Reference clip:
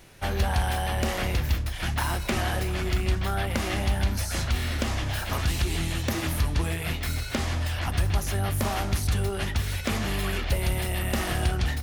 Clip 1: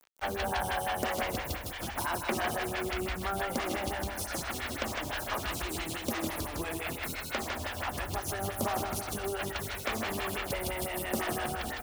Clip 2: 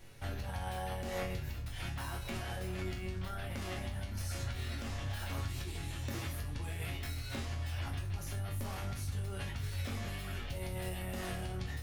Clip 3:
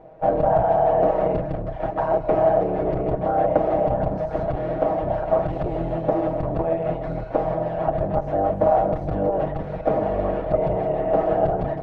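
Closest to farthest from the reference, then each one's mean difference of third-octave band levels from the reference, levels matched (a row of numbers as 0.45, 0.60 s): 2, 1, 3; 3.0, 5.5, 16.0 dB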